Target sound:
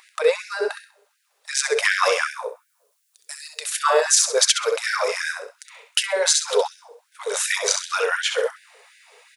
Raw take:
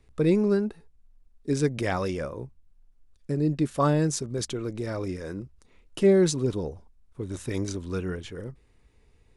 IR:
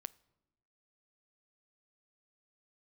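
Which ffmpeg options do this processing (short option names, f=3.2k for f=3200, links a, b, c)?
-filter_complex "[0:a]asettb=1/sr,asplit=3[a][b][c];[a]atrim=end=2.434[d];[b]atrim=start=2.43:end=3.72,asetpts=PTS-STARTPTS,afade=t=in:d=0.004:c=qsin,afade=t=out:st=1.286:d=0.004:c=qsin,aderivative[e];[c]atrim=start=3.716[f];[d][e]acrossfade=d=0.004:c1=hsin:c2=qsin[g];[g][f]acrossfade=d=0.004:c1=qsin:c2=hsin,aeval=exprs='val(0)+0.01*(sin(2*PI*60*n/s)+sin(2*PI*2*60*n/s)/2+sin(2*PI*3*60*n/s)/3+sin(2*PI*4*60*n/s)/4+sin(2*PI*5*60*n/s)/5)':c=same,acontrast=73,aecho=1:1:65|130|195:0.447|0.121|0.0326,asplit=2[h][i];[1:a]atrim=start_sample=2205[j];[i][j]afir=irnorm=-1:irlink=0,volume=15.5dB[k];[h][k]amix=inputs=2:normalize=0,alimiter=level_in=1.5dB:limit=-1dB:release=50:level=0:latency=1,afftfilt=real='re*gte(b*sr/1024,390*pow(1500/390,0.5+0.5*sin(2*PI*2.7*pts/sr)))':imag='im*gte(b*sr/1024,390*pow(1500/390,0.5+0.5*sin(2*PI*2.7*pts/sr)))':win_size=1024:overlap=0.75,volume=-1dB"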